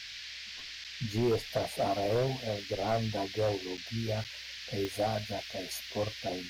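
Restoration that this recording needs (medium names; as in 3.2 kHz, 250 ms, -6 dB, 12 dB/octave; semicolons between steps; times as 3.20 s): clip repair -23 dBFS; de-click; interpolate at 0.84/3.77/4.24 s, 7.8 ms; noise print and reduce 30 dB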